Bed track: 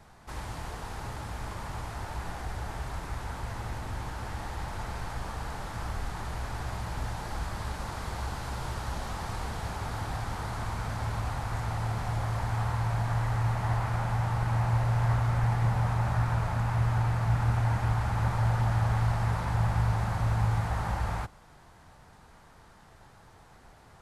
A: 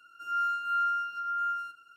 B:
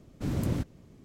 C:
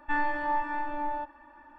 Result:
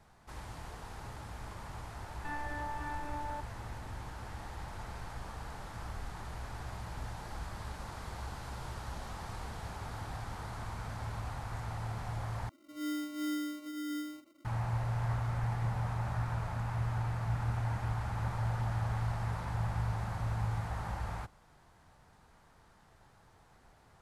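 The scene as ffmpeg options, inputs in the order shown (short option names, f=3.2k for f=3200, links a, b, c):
-filter_complex "[0:a]volume=-7.5dB[a];[3:a]acompressor=threshold=-29dB:ratio=6:attack=3.2:release=140:knee=1:detection=peak[b];[1:a]acrusher=samples=26:mix=1:aa=0.000001[c];[a]asplit=2[d][e];[d]atrim=end=12.494[f];[c]atrim=end=1.96,asetpts=PTS-STARTPTS,volume=-7dB[g];[e]atrim=start=14.446[h];[b]atrim=end=1.78,asetpts=PTS-STARTPTS,volume=-6.5dB,afade=t=in:d=0.004:c=hsin,afade=t=out:st=1.776:d=0.004:c=hsin,adelay=2160[i];[f][g]acrossfade=d=0.004:c1=hsin:c2=hsin[j];[j][h]acrossfade=d=0.004:c1=hsin:c2=hsin[k];[k][i]amix=inputs=2:normalize=0"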